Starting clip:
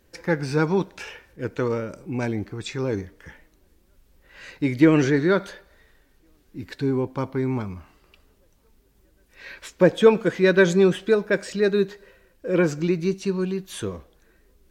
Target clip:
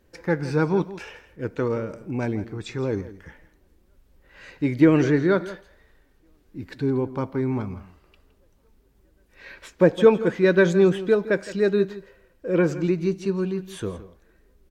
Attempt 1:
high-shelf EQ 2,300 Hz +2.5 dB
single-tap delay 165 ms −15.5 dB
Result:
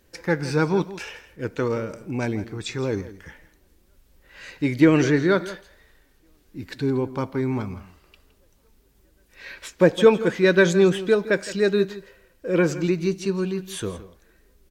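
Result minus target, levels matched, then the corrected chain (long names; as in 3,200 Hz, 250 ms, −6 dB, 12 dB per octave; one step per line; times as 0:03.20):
4,000 Hz band +6.0 dB
high-shelf EQ 2,300 Hz −6.5 dB
single-tap delay 165 ms −15.5 dB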